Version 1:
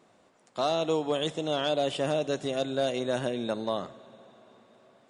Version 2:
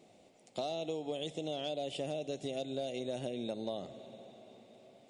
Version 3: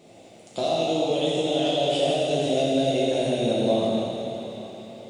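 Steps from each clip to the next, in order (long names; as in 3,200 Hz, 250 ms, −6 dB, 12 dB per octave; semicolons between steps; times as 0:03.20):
flat-topped bell 1,300 Hz −13.5 dB 1.1 octaves; downward compressor 6 to 1, threshold −36 dBFS, peak gain reduction 12.5 dB; level +1 dB
dense smooth reverb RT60 3.2 s, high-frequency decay 0.95×, DRR −6.5 dB; level +8 dB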